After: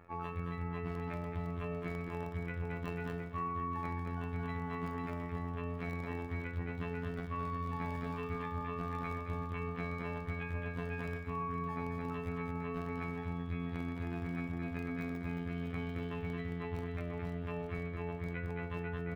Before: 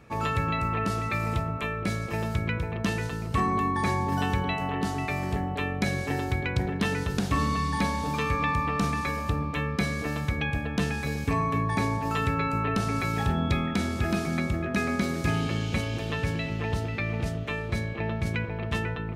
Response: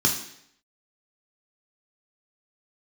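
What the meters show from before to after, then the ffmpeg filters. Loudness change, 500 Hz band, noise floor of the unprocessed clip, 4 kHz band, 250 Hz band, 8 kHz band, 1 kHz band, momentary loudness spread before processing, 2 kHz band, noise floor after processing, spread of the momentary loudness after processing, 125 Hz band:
-11.5 dB, -8.5 dB, -33 dBFS, -20.5 dB, -10.5 dB, under -25 dB, -12.5 dB, 4 LU, -13.5 dB, -42 dBFS, 2 LU, -11.0 dB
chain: -filter_complex "[0:a]equalizer=f=230:w=0.52:g=-6.5,afftfilt=real='hypot(re,im)*cos(PI*b)':imag='0':win_size=2048:overlap=0.75,acrossover=split=6600[a][b];[a]lowpass=1.6k[c];[b]acrusher=samples=29:mix=1:aa=0.000001:lfo=1:lforange=17.4:lforate=0.33[d];[c][d]amix=inputs=2:normalize=0,aecho=1:1:220|506|877.8|1361|1989:0.631|0.398|0.251|0.158|0.1,areverse,acompressor=threshold=-39dB:ratio=8,areverse,volume=4.5dB"

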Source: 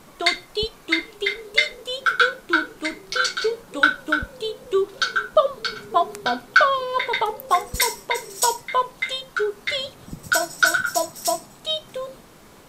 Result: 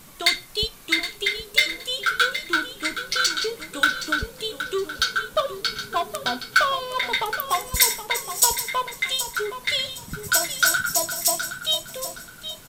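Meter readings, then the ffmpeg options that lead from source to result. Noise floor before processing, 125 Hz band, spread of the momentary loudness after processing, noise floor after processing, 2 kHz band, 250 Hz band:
-48 dBFS, +1.5 dB, 9 LU, -45 dBFS, -2.0 dB, -4.0 dB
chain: -filter_complex "[0:a]asplit=2[a][b];[b]aeval=exprs='0.133*(abs(mod(val(0)/0.133+3,4)-2)-1)':c=same,volume=-11.5dB[c];[a][c]amix=inputs=2:normalize=0,bass=f=250:g=10,treble=f=4k:g=-6,aecho=1:1:769|1538|2307:0.282|0.0733|0.0191,crystalizer=i=8.5:c=0,volume=-10dB"

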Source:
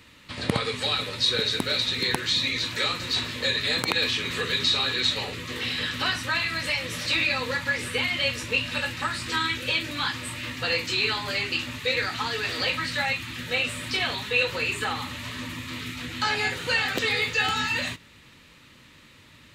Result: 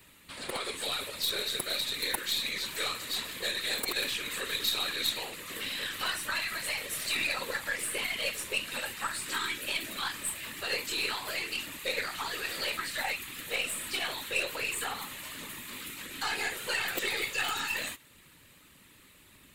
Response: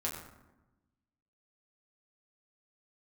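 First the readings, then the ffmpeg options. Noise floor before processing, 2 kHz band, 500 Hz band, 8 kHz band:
-53 dBFS, -7.0 dB, -8.0 dB, +1.5 dB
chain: -filter_complex "[0:a]acrossover=split=290[a][b];[a]acompressor=threshold=-50dB:ratio=5[c];[b]asoftclip=type=tanh:threshold=-15dB[d];[c][d]amix=inputs=2:normalize=0,aexciter=amount=6.3:drive=2.6:freq=7.8k,afftfilt=real='hypot(re,im)*cos(2*PI*random(0))':imag='hypot(re,im)*sin(2*PI*random(1))':win_size=512:overlap=0.75,aeval=exprs='0.188*(cos(1*acos(clip(val(0)/0.188,-1,1)))-cos(1*PI/2))+0.0188*(cos(3*acos(clip(val(0)/0.188,-1,1)))-cos(3*PI/2))+0.00376*(cos(8*acos(clip(val(0)/0.188,-1,1)))-cos(8*PI/2))':c=same,volume=2.5dB"

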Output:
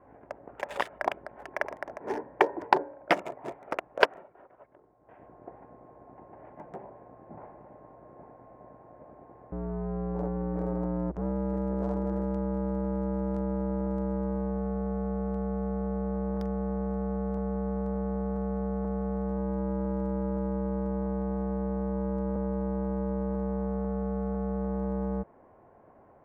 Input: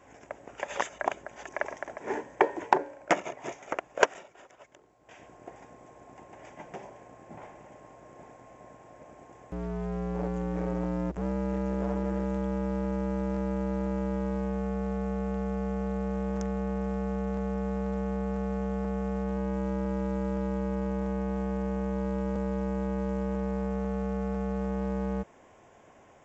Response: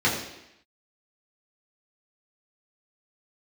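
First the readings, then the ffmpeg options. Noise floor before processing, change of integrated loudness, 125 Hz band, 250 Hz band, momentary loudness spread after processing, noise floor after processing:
-56 dBFS, 0.0 dB, 0.0 dB, 0.0 dB, 16 LU, -57 dBFS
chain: -filter_complex "[0:a]highshelf=f=3.7k:g=11,aresample=11025,aresample=44100,acrossover=split=1400[a][b];[b]aeval=exprs='sgn(val(0))*max(abs(val(0))-0.00944,0)':c=same[c];[a][c]amix=inputs=2:normalize=0"

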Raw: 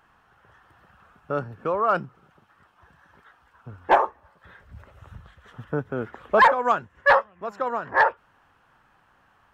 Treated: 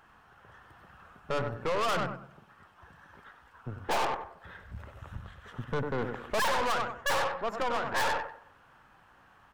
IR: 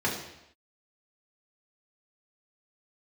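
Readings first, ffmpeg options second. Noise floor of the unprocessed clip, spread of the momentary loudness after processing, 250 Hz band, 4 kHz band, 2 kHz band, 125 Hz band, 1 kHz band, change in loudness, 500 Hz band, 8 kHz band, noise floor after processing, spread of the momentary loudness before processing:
-62 dBFS, 17 LU, -4.5 dB, +3.0 dB, -9.0 dB, -1.5 dB, -9.0 dB, -8.5 dB, -7.5 dB, n/a, -60 dBFS, 14 LU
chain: -filter_complex "[0:a]aecho=1:1:96|192|288:0.316|0.0822|0.0214,asplit=2[a][b];[1:a]atrim=start_sample=2205,adelay=17[c];[b][c]afir=irnorm=-1:irlink=0,volume=-30dB[d];[a][d]amix=inputs=2:normalize=0,aeval=exprs='(tanh(35.5*val(0)+0.6)-tanh(0.6))/35.5':c=same,volume=4dB"

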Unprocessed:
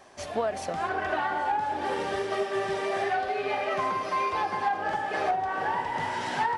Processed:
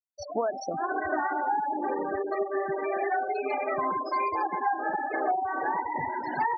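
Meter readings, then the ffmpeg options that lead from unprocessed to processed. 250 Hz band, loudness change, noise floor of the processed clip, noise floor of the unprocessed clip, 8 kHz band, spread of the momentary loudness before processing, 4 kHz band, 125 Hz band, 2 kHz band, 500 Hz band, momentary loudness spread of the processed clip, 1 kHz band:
+2.5 dB, -0.5 dB, -38 dBFS, -37 dBFS, n/a, 3 LU, under -10 dB, -6.0 dB, -2.0 dB, -0.5 dB, 3 LU, 0.0 dB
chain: -af "superequalizer=6b=2:14b=2.51,afftfilt=real='re*gte(hypot(re,im),0.0562)':imag='im*gte(hypot(re,im),0.0562)':win_size=1024:overlap=0.75"

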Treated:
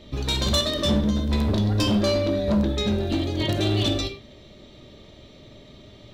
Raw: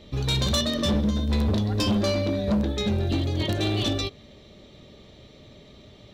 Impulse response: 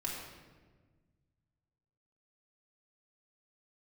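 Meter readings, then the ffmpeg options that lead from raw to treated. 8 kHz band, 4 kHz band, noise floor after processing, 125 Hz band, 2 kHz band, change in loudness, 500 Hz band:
+1.0 dB, +2.0 dB, -48 dBFS, +0.5 dB, +1.0 dB, +1.5 dB, +3.0 dB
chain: -filter_complex "[0:a]asplit=2[a][b];[1:a]atrim=start_sample=2205,afade=t=out:st=0.16:d=0.01,atrim=end_sample=7497[c];[b][c]afir=irnorm=-1:irlink=0,volume=-2.5dB[d];[a][d]amix=inputs=2:normalize=0,volume=-2.5dB"

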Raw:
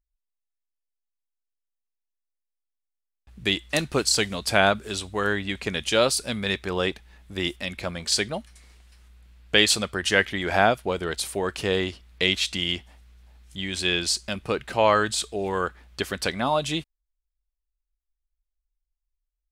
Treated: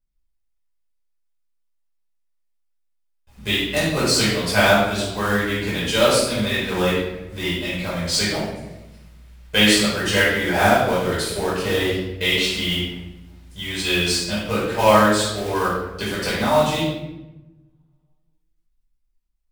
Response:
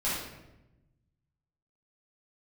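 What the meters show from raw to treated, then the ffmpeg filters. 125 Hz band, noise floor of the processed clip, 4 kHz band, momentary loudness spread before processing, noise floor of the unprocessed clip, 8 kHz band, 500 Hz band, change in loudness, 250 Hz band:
+7.5 dB, -68 dBFS, +3.5 dB, 11 LU, -83 dBFS, +2.5 dB, +5.0 dB, +5.0 dB, +7.5 dB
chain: -filter_complex "[0:a]acrusher=bits=3:mode=log:mix=0:aa=0.000001[a];[1:a]atrim=start_sample=2205,asetrate=42336,aresample=44100[b];[a][b]afir=irnorm=-1:irlink=0,volume=-4dB"

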